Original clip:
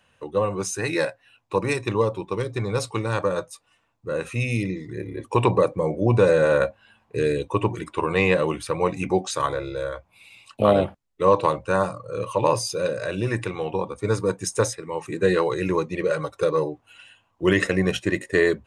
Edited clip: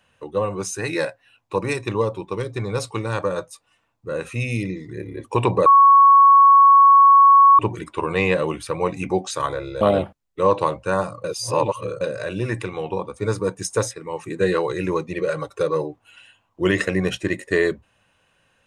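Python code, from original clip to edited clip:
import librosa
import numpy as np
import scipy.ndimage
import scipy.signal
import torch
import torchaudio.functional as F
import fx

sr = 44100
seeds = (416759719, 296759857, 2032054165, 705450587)

y = fx.edit(x, sr, fx.bleep(start_s=5.66, length_s=1.93, hz=1110.0, db=-7.5),
    fx.cut(start_s=9.81, length_s=0.82),
    fx.reverse_span(start_s=12.06, length_s=0.77), tone=tone)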